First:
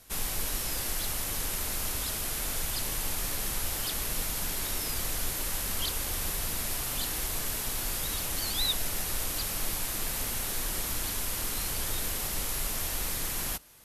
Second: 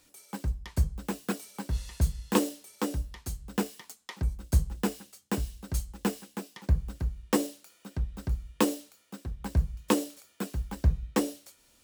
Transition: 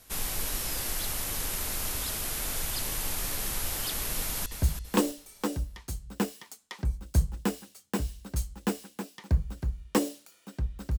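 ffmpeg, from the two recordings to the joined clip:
ffmpeg -i cue0.wav -i cue1.wav -filter_complex "[0:a]apad=whole_dur=10.98,atrim=end=10.98,atrim=end=4.462[link_01];[1:a]atrim=start=1.838:end=8.36[link_02];[link_01][link_02]acrossfade=duration=0.004:curve1=hsin:curve2=hsin,asplit=2[link_03][link_04];[link_04]afade=type=in:start_time=4.18:duration=0.01,afade=type=out:start_time=4.46:duration=0.01,aecho=0:1:330|660|990|1320:0.398107|0.139338|0.0487681|0.0170688[link_05];[link_03][link_05]amix=inputs=2:normalize=0" out.wav

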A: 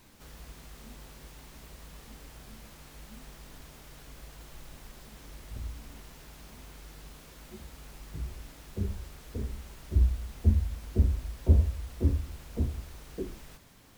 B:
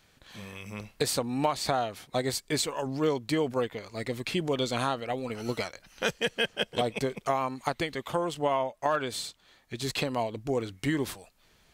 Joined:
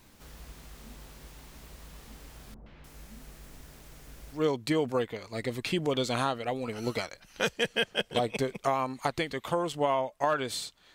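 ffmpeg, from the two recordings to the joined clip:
ffmpeg -i cue0.wav -i cue1.wav -filter_complex "[0:a]asettb=1/sr,asplit=3[link_01][link_02][link_03];[link_01]atrim=end=2.544[link_04];[link_02]atrim=start=2.54:end=4.45,asetpts=PTS-STARTPTS,afade=type=in:duration=0.004:curve=qsin,afade=type=out:start_time=1.906:duration=0.004:curve=qsin,acrossover=split=990|3600[link_05][link_06][link_07];[link_06]adelay=120[link_08];[link_07]adelay=300[link_09];[link_05][link_08][link_09]amix=inputs=3:normalize=0,atrim=end_sample=84231[link_10];[link_03]atrim=start=4.446[link_11];[link_04][link_10]acrossfade=duration=0.004:curve1=hsin:curve2=qsin[link_12];[link_12][link_11]acrossfade=duration=0.004:curve1=qsin:curve2=hsin,apad=whole_dur=10.94,atrim=end=10.94,atrim=end=4.45,asetpts=PTS-STARTPTS[link_13];[1:a]atrim=start=2.93:end=9.56,asetpts=PTS-STARTPTS[link_14];[link_13][link_14]acrossfade=duration=0.14:curve1=tri:curve2=tri" out.wav

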